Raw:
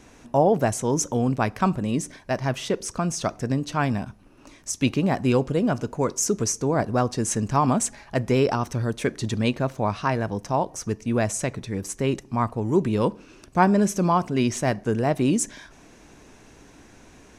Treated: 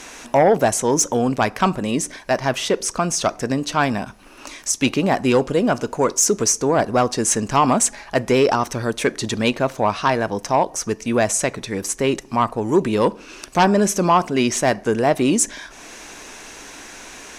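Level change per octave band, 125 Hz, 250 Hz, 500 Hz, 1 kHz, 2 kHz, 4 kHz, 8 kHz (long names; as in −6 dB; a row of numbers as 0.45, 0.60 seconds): −1.5, +2.5, +6.0, +6.0, +7.0, +8.5, +8.5 decibels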